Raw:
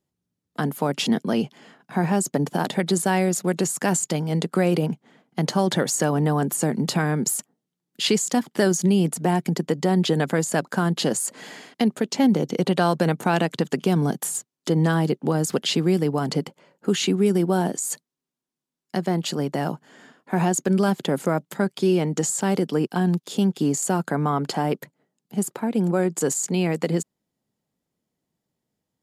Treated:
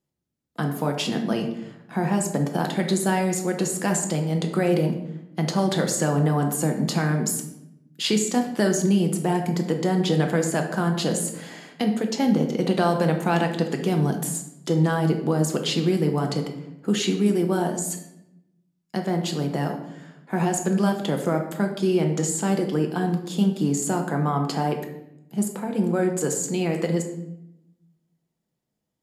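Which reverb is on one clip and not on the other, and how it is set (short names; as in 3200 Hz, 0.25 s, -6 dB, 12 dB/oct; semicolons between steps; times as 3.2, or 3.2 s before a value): shoebox room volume 270 m³, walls mixed, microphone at 0.74 m; gain -3 dB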